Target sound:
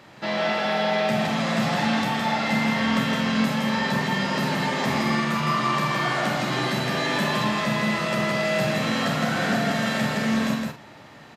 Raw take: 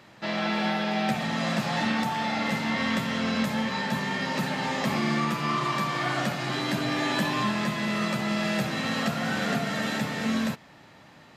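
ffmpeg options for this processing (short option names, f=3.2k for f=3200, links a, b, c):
-filter_complex "[0:a]equalizer=f=590:t=o:w=1.9:g=2,asplit=2[a][b];[b]alimiter=limit=-22.5dB:level=0:latency=1,volume=-1.5dB[c];[a][c]amix=inputs=2:normalize=0,asplit=2[d][e];[e]adelay=46,volume=-8dB[f];[d][f]amix=inputs=2:normalize=0,aecho=1:1:32.07|163.3:0.355|0.708,volume=-3dB"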